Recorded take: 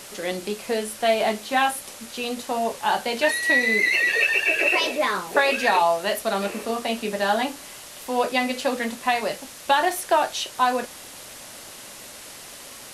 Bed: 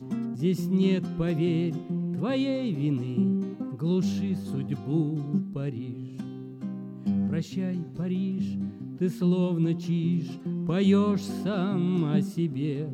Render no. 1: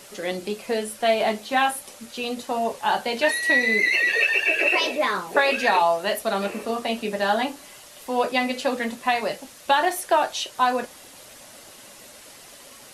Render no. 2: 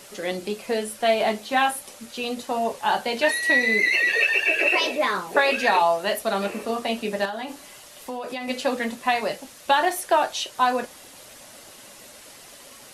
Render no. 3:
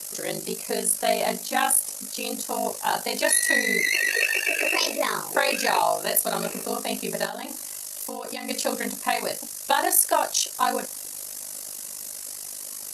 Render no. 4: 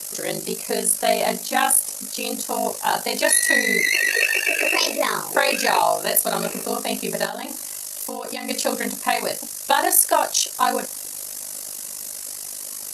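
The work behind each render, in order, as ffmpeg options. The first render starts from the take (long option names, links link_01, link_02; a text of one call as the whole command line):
ffmpeg -i in.wav -af "afftdn=noise_reduction=6:noise_floor=-41" out.wav
ffmpeg -i in.wav -filter_complex "[0:a]asettb=1/sr,asplit=3[link_01][link_02][link_03];[link_01]atrim=end=7.254[link_04];[link_02]atrim=start=7.25:end=8.48,asetpts=PTS-STARTPTS,afade=type=in:duration=0.004:curve=qsin,afade=type=out:start_time=1.226:duration=0.004:curve=qsin,acompressor=threshold=-27dB:ratio=10:attack=3.2:release=140:knee=1:detection=peak[link_05];[link_03]atrim=start=8.476[link_06];[link_04][link_05]acrossfade=duration=0.004:curve1=hsin:curve2=qsin[link_07];[link_07][link_06]acrossfade=duration=0.004:curve1=qsin:curve2=hsin" out.wav
ffmpeg -i in.wav -filter_complex "[0:a]acrossover=split=300|930[link_01][link_02][link_03];[link_03]aexciter=amount=5.9:drive=3.6:freq=4800[link_04];[link_01][link_02][link_04]amix=inputs=3:normalize=0,aeval=exprs='val(0)*sin(2*PI*25*n/s)':channel_layout=same" out.wav
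ffmpeg -i in.wav -af "volume=3.5dB" out.wav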